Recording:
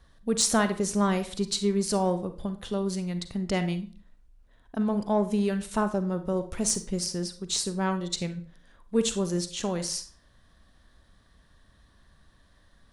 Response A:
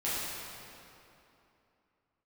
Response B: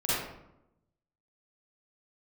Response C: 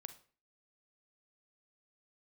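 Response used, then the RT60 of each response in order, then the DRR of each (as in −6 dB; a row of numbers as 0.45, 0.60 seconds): C; 2.9 s, 0.85 s, non-exponential decay; −11.0, −11.0, 9.5 decibels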